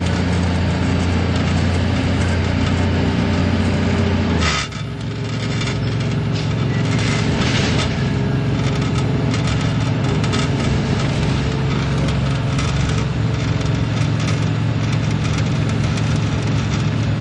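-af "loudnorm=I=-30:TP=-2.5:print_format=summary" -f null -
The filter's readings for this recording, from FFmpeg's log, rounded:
Input Integrated:    -18.7 LUFS
Input True Peak:      -6.5 dBTP
Input LRA:             0.9 LU
Input Threshold:     -28.7 LUFS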